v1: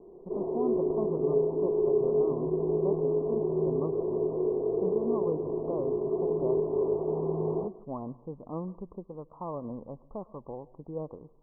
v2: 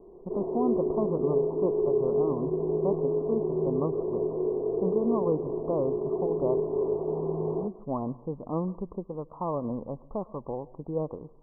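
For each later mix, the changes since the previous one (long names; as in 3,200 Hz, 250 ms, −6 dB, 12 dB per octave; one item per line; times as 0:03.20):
speech +6.0 dB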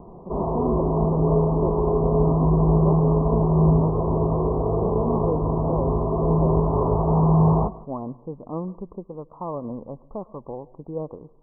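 background: remove resonant band-pass 390 Hz, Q 4.4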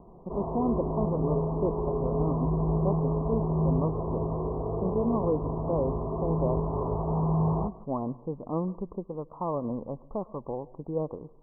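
background −8.5 dB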